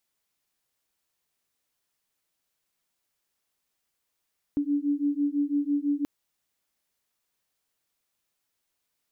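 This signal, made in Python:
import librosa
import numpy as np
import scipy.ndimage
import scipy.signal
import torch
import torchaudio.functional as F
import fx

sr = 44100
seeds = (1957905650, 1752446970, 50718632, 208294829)

y = fx.two_tone_beats(sr, length_s=1.48, hz=285.0, beat_hz=6.0, level_db=-26.5)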